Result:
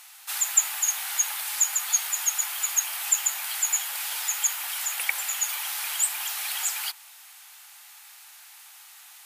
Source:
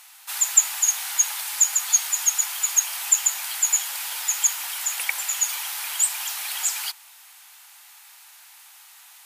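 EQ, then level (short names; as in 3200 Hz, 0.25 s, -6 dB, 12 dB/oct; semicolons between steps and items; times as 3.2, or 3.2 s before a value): HPF 320 Hz 12 dB/oct; notch 970 Hz, Q 18; dynamic EQ 6000 Hz, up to -5 dB, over -33 dBFS, Q 0.97; 0.0 dB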